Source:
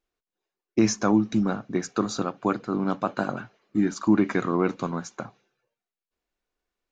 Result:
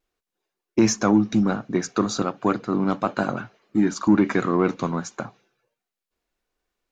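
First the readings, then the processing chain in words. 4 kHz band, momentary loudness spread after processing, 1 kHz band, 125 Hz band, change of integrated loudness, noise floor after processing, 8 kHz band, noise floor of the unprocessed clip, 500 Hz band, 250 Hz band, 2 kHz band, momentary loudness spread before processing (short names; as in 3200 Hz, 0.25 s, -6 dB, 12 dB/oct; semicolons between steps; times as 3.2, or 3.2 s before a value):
+3.5 dB, 9 LU, +3.0 dB, +3.0 dB, +3.0 dB, under -85 dBFS, n/a, under -85 dBFS, +3.0 dB, +3.0 dB, +3.5 dB, 10 LU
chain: vibrato 1.4 Hz 29 cents; in parallel at -4 dB: soft clip -18.5 dBFS, distortion -11 dB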